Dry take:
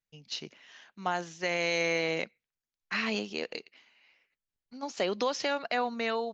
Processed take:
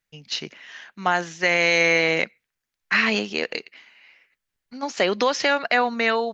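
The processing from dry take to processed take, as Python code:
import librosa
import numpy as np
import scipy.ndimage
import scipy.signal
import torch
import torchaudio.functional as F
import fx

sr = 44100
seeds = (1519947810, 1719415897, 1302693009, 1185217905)

y = fx.peak_eq(x, sr, hz=1800.0, db=6.0, octaves=1.0)
y = F.gain(torch.from_numpy(y), 8.0).numpy()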